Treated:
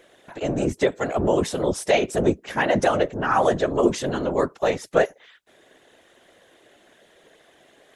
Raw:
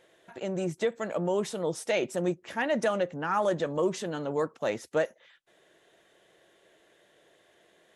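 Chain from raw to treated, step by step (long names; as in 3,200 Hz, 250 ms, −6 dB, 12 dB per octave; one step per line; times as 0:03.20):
random phases in short frames
level +7.5 dB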